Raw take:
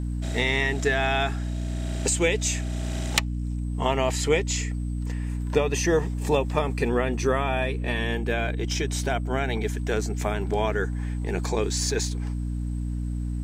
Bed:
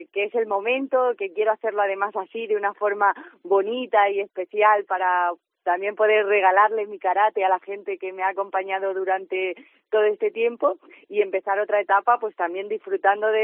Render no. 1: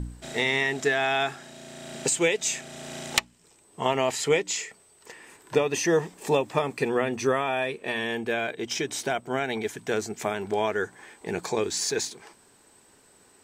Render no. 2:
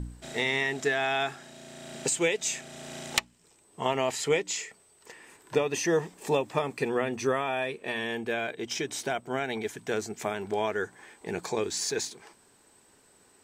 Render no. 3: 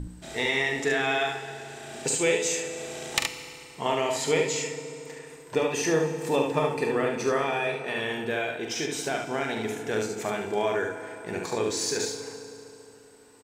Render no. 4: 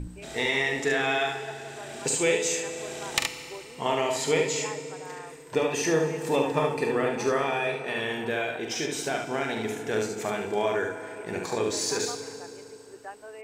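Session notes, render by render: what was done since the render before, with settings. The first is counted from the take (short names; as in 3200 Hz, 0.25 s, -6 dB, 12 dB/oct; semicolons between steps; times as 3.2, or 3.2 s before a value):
de-hum 60 Hz, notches 5
gain -3 dB
early reflections 44 ms -7.5 dB, 72 ms -5 dB; FDN reverb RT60 3.3 s, high-frequency decay 0.7×, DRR 8 dB
add bed -23 dB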